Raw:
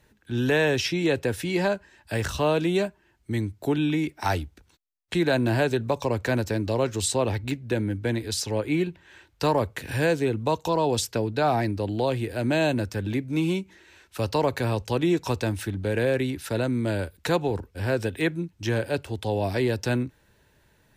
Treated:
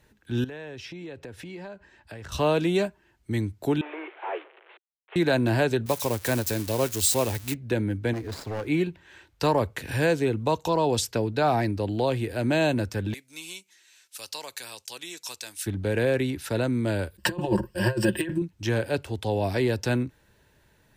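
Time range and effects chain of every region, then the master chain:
0.44–2.32 s: low-pass 3.3 kHz 6 dB/octave + compression 4:1, threshold -39 dBFS
3.81–5.16 s: one-bit delta coder 16 kbps, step -39 dBFS + steep high-pass 360 Hz 72 dB/octave + three bands expanded up and down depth 40%
5.86–7.54 s: zero-crossing glitches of -19.5 dBFS + upward expansion, over -33 dBFS
8.13–8.67 s: median filter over 15 samples + hard clipper -27.5 dBFS
13.14–15.66 s: band-pass filter 7.2 kHz, Q 0.64 + treble shelf 6.5 kHz +10 dB
17.18–18.42 s: comb 5.6 ms, depth 71% + compressor with a negative ratio -26 dBFS, ratio -0.5 + rippled EQ curve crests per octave 1.3, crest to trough 13 dB
whole clip: none

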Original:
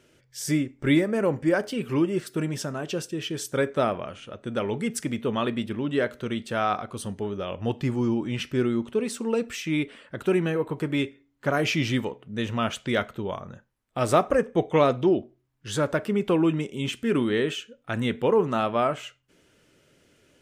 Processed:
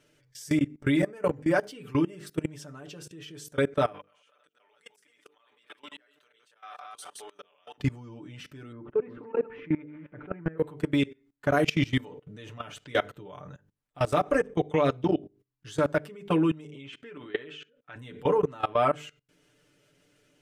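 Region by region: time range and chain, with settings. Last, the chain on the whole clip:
3.92–7.78 s: chunks repeated in reverse 151 ms, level -5 dB + high-pass 960 Hz + slow attack 758 ms
8.72–10.58 s: backward echo that repeats 226 ms, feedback 40%, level -9.5 dB + low-pass 1.8 kHz 24 dB/octave
16.70–17.96 s: low-pass 2.5 kHz + tilt EQ +2.5 dB/octave
whole clip: hum notches 50/100/150/200/250/300/350/400/450/500 Hz; comb 6.8 ms, depth 81%; level held to a coarse grid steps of 22 dB

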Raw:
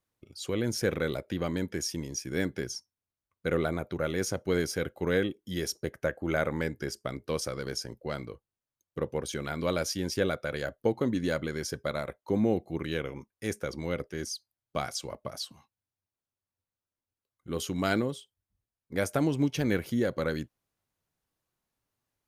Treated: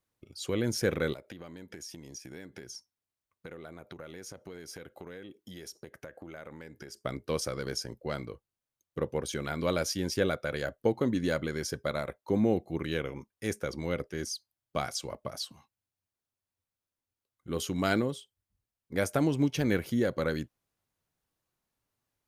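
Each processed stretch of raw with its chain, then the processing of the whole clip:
1.13–7.05 s: compression 16:1, threshold -39 dBFS + bass shelf 150 Hz -6 dB
whole clip: none

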